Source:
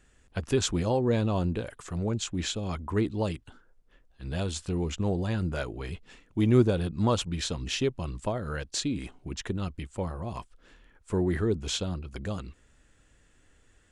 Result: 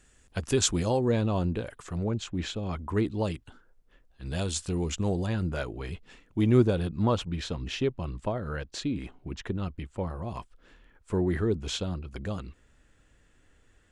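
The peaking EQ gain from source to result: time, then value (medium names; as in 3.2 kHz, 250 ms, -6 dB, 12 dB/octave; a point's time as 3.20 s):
peaking EQ 8.7 kHz 1.8 oct
+6.5 dB
from 1.11 s -3 dB
from 2.04 s -10 dB
from 2.79 s -1 dB
from 4.26 s +6 dB
from 5.26 s -2.5 dB
from 6.97 s -11 dB
from 10.10 s -4.5 dB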